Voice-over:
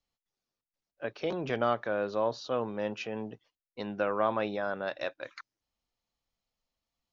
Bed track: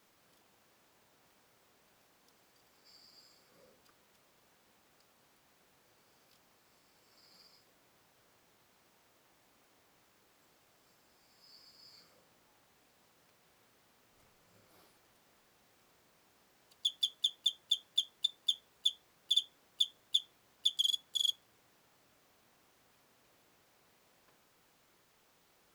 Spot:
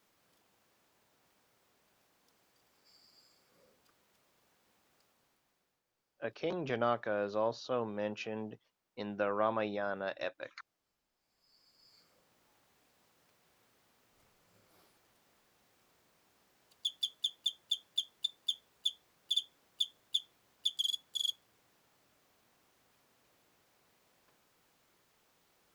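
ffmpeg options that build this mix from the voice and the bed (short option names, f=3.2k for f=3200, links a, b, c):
-filter_complex "[0:a]adelay=5200,volume=-3.5dB[a];[1:a]volume=11dB,afade=t=out:st=5.01:d=0.81:silence=0.211349,afade=t=in:st=11.16:d=1.32:silence=0.177828[b];[a][b]amix=inputs=2:normalize=0"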